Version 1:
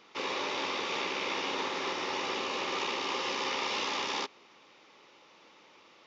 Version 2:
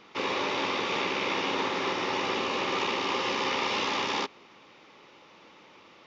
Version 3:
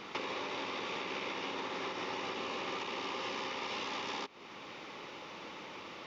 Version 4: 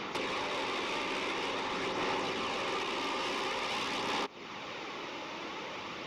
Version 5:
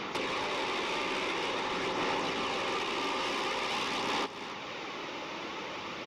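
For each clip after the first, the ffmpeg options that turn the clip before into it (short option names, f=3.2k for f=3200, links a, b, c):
-af "bass=f=250:g=6,treble=f=4k:g=-5,volume=4.5dB"
-af "alimiter=level_in=2dB:limit=-24dB:level=0:latency=1:release=463,volume=-2dB,acompressor=threshold=-44dB:ratio=5,volume=7dB"
-af "aeval=exprs='0.0531*(cos(1*acos(clip(val(0)/0.0531,-1,1)))-cos(1*PI/2))+0.0106*(cos(5*acos(clip(val(0)/0.0531,-1,1)))-cos(5*PI/2))':c=same,aphaser=in_gain=1:out_gain=1:delay=3.3:decay=0.26:speed=0.48:type=sinusoidal"
-af "aecho=1:1:275:0.266,volume=1.5dB"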